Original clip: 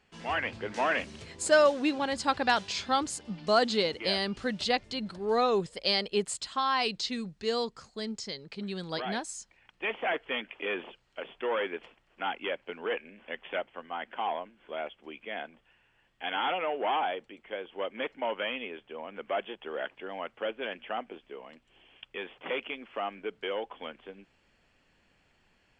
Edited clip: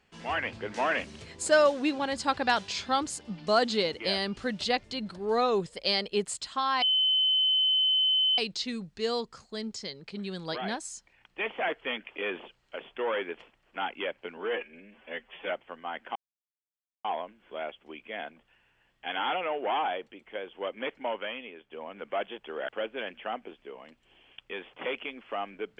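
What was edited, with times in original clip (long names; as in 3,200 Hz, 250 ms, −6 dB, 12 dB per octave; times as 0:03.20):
0:06.82: insert tone 3,050 Hz −21.5 dBFS 1.56 s
0:12.81–0:13.56: time-stretch 1.5×
0:14.22: splice in silence 0.89 s
0:18.23–0:18.88: fade out quadratic, to −6.5 dB
0:19.86–0:20.33: remove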